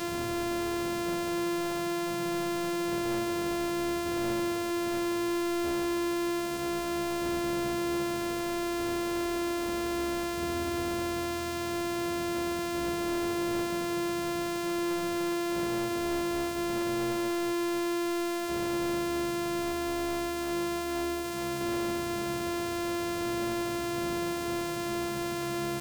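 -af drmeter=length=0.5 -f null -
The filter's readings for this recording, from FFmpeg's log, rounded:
Channel 1: DR: -1.0
Overall DR: -1.0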